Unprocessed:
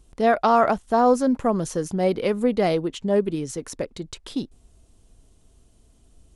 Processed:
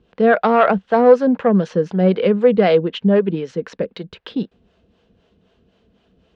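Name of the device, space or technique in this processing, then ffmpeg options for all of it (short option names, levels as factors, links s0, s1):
guitar amplifier with harmonic tremolo: -filter_complex "[0:a]acrossover=split=440[s0][s1];[s0]aeval=exprs='val(0)*(1-0.7/2+0.7/2*cos(2*PI*3.9*n/s))':c=same[s2];[s1]aeval=exprs='val(0)*(1-0.7/2-0.7/2*cos(2*PI*3.9*n/s))':c=same[s3];[s2][s3]amix=inputs=2:normalize=0,asoftclip=type=tanh:threshold=0.237,highpass=110,equalizer=f=120:t=q:w=4:g=-7,equalizer=f=190:t=q:w=4:g=8,equalizer=f=300:t=q:w=4:g=-4,equalizer=f=480:t=q:w=4:g=8,equalizer=f=1600:t=q:w=4:g=7,equalizer=f=2800:t=q:w=4:g=4,lowpass=f=3900:w=0.5412,lowpass=f=3900:w=1.3066,volume=2.24"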